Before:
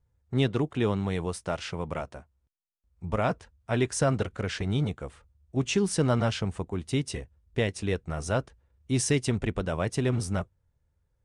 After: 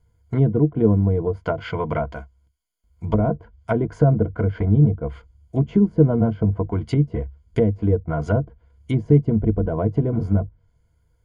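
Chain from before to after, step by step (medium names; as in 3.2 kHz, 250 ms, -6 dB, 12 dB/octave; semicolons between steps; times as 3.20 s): rippled EQ curve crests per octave 1.8, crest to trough 13 dB; low-pass that closes with the level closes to 470 Hz, closed at -23.5 dBFS; trim +8 dB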